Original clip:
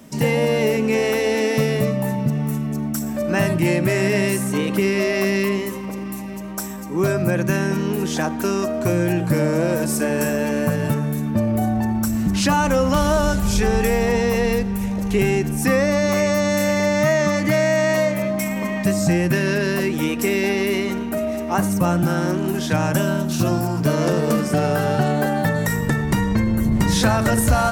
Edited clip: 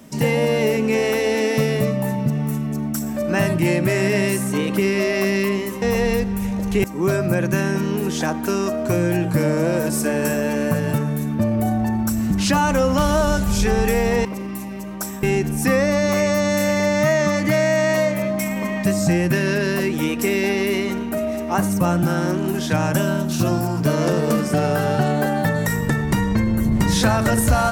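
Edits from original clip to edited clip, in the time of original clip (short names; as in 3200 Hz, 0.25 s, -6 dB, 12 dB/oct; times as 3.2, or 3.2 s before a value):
5.82–6.8 swap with 14.21–15.23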